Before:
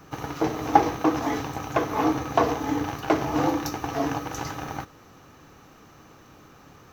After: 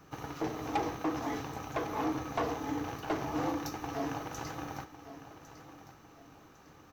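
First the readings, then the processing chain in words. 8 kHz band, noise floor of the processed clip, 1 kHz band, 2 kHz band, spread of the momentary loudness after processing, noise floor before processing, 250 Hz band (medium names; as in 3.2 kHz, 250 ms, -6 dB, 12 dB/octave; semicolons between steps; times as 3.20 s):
-8.5 dB, -58 dBFS, -11.0 dB, -9.0 dB, 18 LU, -52 dBFS, -9.5 dB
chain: saturation -17 dBFS, distortion -10 dB; on a send: feedback delay 1104 ms, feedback 36%, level -14 dB; on the sum: trim -8 dB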